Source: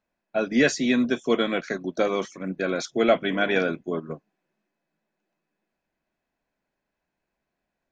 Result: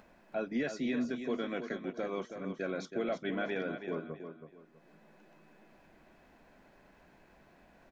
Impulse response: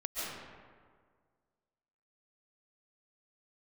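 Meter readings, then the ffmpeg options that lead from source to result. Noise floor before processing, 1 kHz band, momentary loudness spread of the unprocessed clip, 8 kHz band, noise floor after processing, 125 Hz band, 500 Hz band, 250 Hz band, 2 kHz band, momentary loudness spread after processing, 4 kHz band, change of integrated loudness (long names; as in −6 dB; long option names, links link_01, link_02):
−83 dBFS, −12.5 dB, 10 LU, below −15 dB, −63 dBFS, −10.0 dB, −12.0 dB, −11.0 dB, −13.5 dB, 10 LU, −16.0 dB, −12.5 dB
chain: -filter_complex "[0:a]highshelf=frequency=3900:gain=-11,alimiter=limit=-15.5dB:level=0:latency=1:release=175,acompressor=mode=upward:threshold=-29dB:ratio=2.5,asplit=2[link_01][link_02];[link_02]aecho=0:1:324|648|972:0.376|0.101|0.0274[link_03];[link_01][link_03]amix=inputs=2:normalize=0,volume=-9dB"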